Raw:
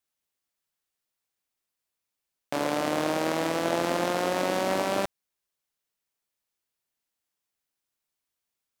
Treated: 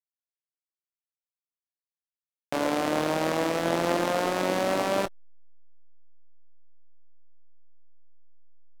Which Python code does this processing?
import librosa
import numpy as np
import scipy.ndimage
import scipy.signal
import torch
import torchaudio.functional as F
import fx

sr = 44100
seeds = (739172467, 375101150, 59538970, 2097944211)

y = fx.chorus_voices(x, sr, voices=4, hz=0.32, base_ms=22, depth_ms=4.8, mix_pct=25)
y = fx.backlash(y, sr, play_db=-37.5)
y = y * librosa.db_to_amplitude(3.0)